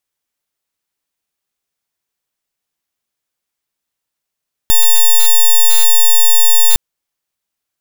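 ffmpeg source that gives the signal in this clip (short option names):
-f lavfi -i "aevalsrc='0.447*(2*lt(mod(3600*t,1),0.05)-1)':d=2.06:s=44100"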